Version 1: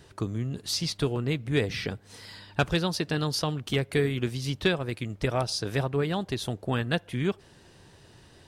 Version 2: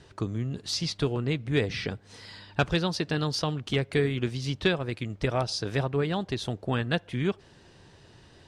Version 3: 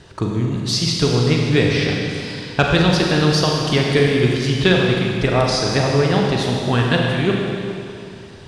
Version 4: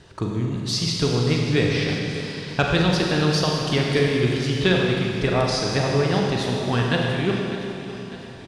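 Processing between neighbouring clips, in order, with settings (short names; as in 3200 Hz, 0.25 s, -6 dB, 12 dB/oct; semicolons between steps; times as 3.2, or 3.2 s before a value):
LPF 7000 Hz 12 dB/oct
Schroeder reverb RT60 2.6 s, combs from 33 ms, DRR -1 dB; gain +8.5 dB
feedback echo 0.601 s, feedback 57%, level -14.5 dB; gain -4.5 dB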